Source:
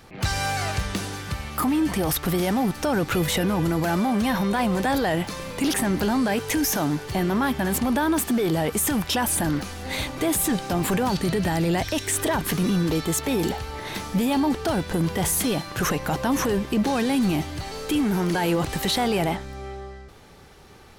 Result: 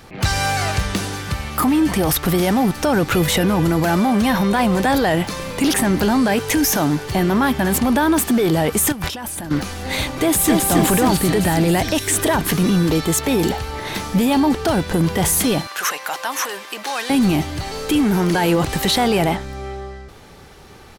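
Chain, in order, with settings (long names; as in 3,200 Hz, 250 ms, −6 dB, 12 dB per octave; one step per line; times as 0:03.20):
0:08.92–0:09.51: compressor whose output falls as the input rises −34 dBFS, ratio −1
0:10.20–0:10.63: delay throw 270 ms, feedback 70%, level −2.5 dB
0:15.67–0:17.10: high-pass filter 930 Hz 12 dB per octave
level +6 dB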